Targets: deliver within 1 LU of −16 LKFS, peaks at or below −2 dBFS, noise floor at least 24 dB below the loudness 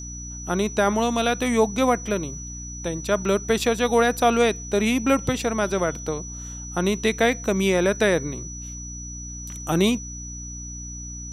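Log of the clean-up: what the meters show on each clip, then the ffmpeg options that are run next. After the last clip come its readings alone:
mains hum 60 Hz; hum harmonics up to 300 Hz; level of the hum −35 dBFS; interfering tone 5,900 Hz; level of the tone −36 dBFS; integrated loudness −22.5 LKFS; sample peak −7.0 dBFS; target loudness −16.0 LKFS
→ -af "bandreject=frequency=60:width_type=h:width=4,bandreject=frequency=120:width_type=h:width=4,bandreject=frequency=180:width_type=h:width=4,bandreject=frequency=240:width_type=h:width=4,bandreject=frequency=300:width_type=h:width=4"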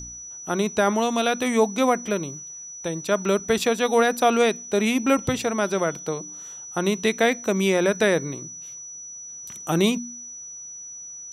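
mains hum none found; interfering tone 5,900 Hz; level of the tone −36 dBFS
→ -af "bandreject=frequency=5900:width=30"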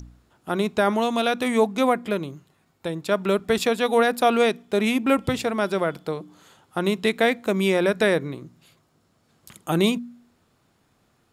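interfering tone none found; integrated loudness −23.0 LKFS; sample peak −8.0 dBFS; target loudness −16.0 LKFS
→ -af "volume=7dB,alimiter=limit=-2dB:level=0:latency=1"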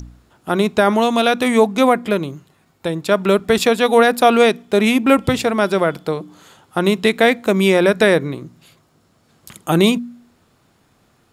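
integrated loudness −16.0 LKFS; sample peak −2.0 dBFS; background noise floor −59 dBFS

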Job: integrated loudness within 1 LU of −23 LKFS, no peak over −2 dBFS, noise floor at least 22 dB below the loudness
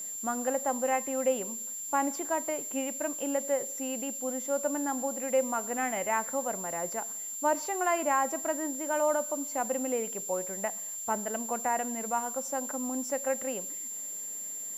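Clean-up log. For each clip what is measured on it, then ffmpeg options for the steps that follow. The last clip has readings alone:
interfering tone 7,300 Hz; level of the tone −36 dBFS; background noise floor −39 dBFS; target noise floor −53 dBFS; integrated loudness −31.0 LKFS; sample peak −15.5 dBFS; target loudness −23.0 LKFS
→ -af "bandreject=frequency=7300:width=30"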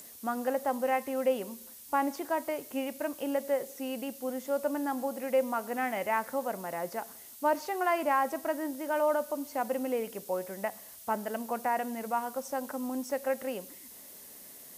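interfering tone none found; background noise floor −50 dBFS; target noise floor −55 dBFS
→ -af "afftdn=noise_reduction=6:noise_floor=-50"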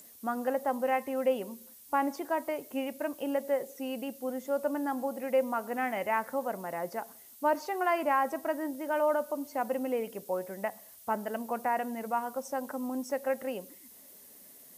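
background noise floor −54 dBFS; target noise floor −55 dBFS
→ -af "afftdn=noise_reduction=6:noise_floor=-54"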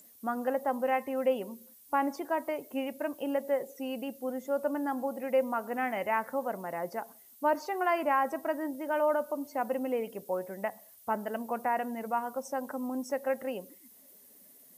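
background noise floor −57 dBFS; integrated loudness −32.5 LKFS; sample peak −16.5 dBFS; target loudness −23.0 LKFS
→ -af "volume=9.5dB"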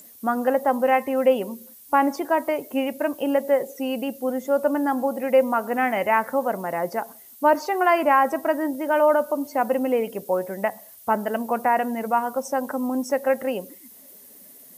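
integrated loudness −23.0 LKFS; sample peak −7.0 dBFS; background noise floor −48 dBFS

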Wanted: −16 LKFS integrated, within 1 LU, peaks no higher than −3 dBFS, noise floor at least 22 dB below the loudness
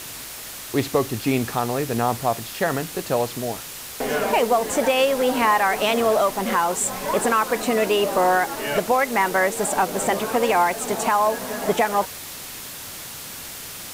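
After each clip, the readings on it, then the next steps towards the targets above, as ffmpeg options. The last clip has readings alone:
background noise floor −36 dBFS; target noise floor −44 dBFS; integrated loudness −21.5 LKFS; sample peak −8.0 dBFS; target loudness −16.0 LKFS
→ -af "afftdn=noise_reduction=8:noise_floor=-36"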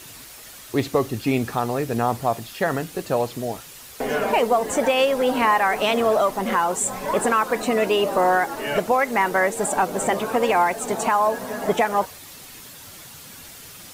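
background noise floor −42 dBFS; target noise floor −44 dBFS
→ -af "afftdn=noise_reduction=6:noise_floor=-42"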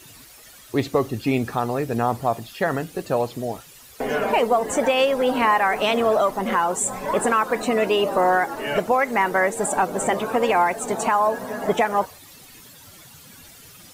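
background noise floor −47 dBFS; integrated loudness −22.0 LKFS; sample peak −8.0 dBFS; target loudness −16.0 LKFS
→ -af "volume=6dB,alimiter=limit=-3dB:level=0:latency=1"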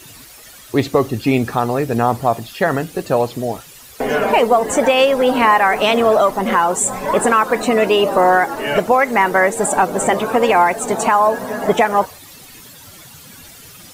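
integrated loudness −16.0 LKFS; sample peak −3.0 dBFS; background noise floor −41 dBFS

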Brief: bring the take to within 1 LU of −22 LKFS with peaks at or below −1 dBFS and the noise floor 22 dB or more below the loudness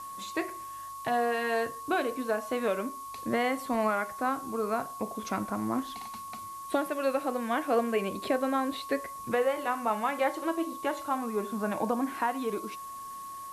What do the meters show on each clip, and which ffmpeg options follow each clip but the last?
interfering tone 1,100 Hz; level of the tone −39 dBFS; background noise floor −42 dBFS; target noise floor −54 dBFS; integrated loudness −31.5 LKFS; sample peak −14.0 dBFS; target loudness −22.0 LKFS
→ -af "bandreject=frequency=1100:width=30"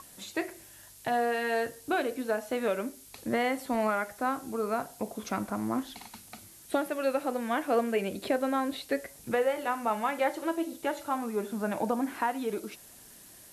interfering tone none found; background noise floor −53 dBFS; target noise floor −54 dBFS
→ -af "afftdn=noise_reduction=6:noise_floor=-53"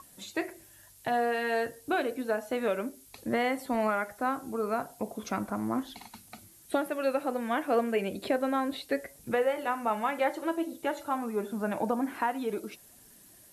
background noise floor −56 dBFS; integrated loudness −31.5 LKFS; sample peak −14.0 dBFS; target loudness −22.0 LKFS
→ -af "volume=9.5dB"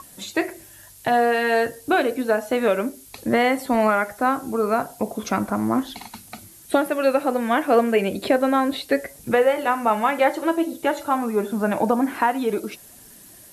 integrated loudness −22.0 LKFS; sample peak −4.5 dBFS; background noise floor −47 dBFS

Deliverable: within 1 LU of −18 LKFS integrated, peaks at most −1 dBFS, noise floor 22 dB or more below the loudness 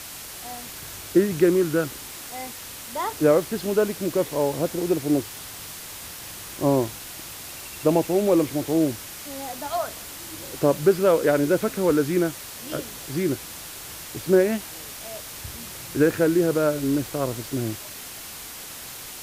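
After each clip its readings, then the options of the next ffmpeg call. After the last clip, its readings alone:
background noise floor −38 dBFS; target noise floor −46 dBFS; integrated loudness −24.0 LKFS; sample peak −6.5 dBFS; target loudness −18.0 LKFS
→ -af "afftdn=noise_reduction=8:noise_floor=-38"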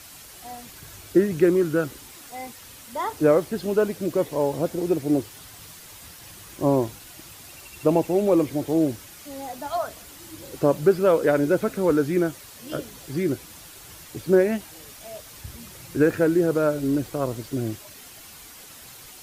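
background noise floor −45 dBFS; target noise floor −46 dBFS
→ -af "afftdn=noise_reduction=6:noise_floor=-45"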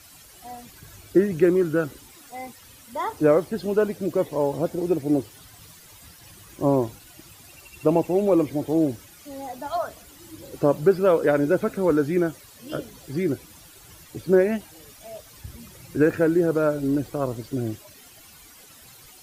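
background noise floor −49 dBFS; integrated loudness −23.5 LKFS; sample peak −7.0 dBFS; target loudness −18.0 LKFS
→ -af "volume=5.5dB"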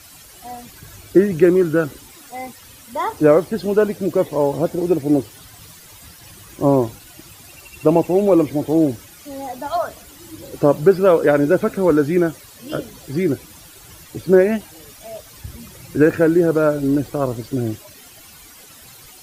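integrated loudness −18.0 LKFS; sample peak −1.5 dBFS; background noise floor −44 dBFS

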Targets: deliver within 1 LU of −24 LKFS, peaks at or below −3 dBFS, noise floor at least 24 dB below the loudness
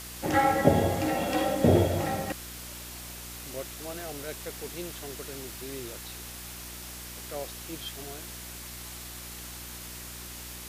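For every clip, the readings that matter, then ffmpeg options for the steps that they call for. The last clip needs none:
mains hum 60 Hz; hum harmonics up to 360 Hz; level of the hum −44 dBFS; background noise floor −42 dBFS; target noise floor −56 dBFS; integrated loudness −31.5 LKFS; sample peak −6.0 dBFS; target loudness −24.0 LKFS
→ -af "bandreject=frequency=60:width_type=h:width=4,bandreject=frequency=120:width_type=h:width=4,bandreject=frequency=180:width_type=h:width=4,bandreject=frequency=240:width_type=h:width=4,bandreject=frequency=300:width_type=h:width=4,bandreject=frequency=360:width_type=h:width=4"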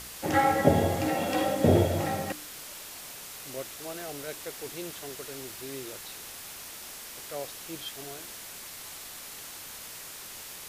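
mains hum none found; background noise floor −43 dBFS; target noise floor −56 dBFS
→ -af "afftdn=noise_reduction=13:noise_floor=-43"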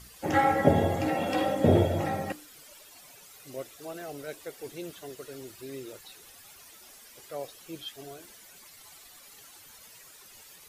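background noise floor −52 dBFS; target noise floor −54 dBFS
→ -af "afftdn=noise_reduction=6:noise_floor=-52"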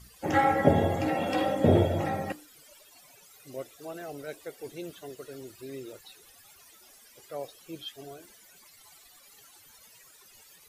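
background noise floor −56 dBFS; integrated loudness −29.0 LKFS; sample peak −6.5 dBFS; target loudness −24.0 LKFS
→ -af "volume=5dB,alimiter=limit=-3dB:level=0:latency=1"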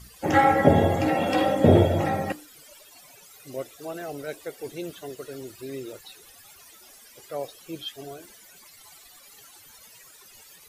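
integrated loudness −24.0 LKFS; sample peak −3.0 dBFS; background noise floor −51 dBFS

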